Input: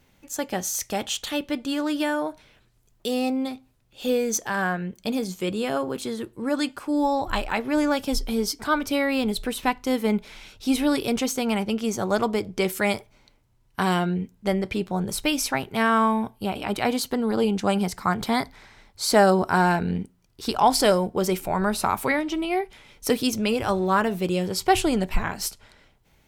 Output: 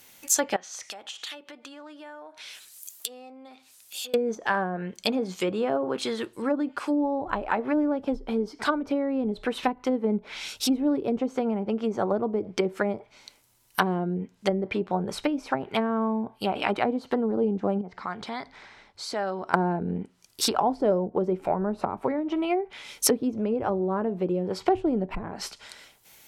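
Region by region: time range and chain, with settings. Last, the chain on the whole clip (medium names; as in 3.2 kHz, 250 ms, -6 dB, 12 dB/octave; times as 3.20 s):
0.56–4.14 s: low-pass that closes with the level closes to 880 Hz, closed at -24 dBFS + tilt EQ +4 dB/octave + compression 4:1, threshold -46 dBFS
17.81–19.54 s: compression 2:1, threshold -38 dBFS + tape spacing loss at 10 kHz 28 dB
whole clip: low-pass that closes with the level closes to 420 Hz, closed at -20 dBFS; RIAA curve recording; trim +5 dB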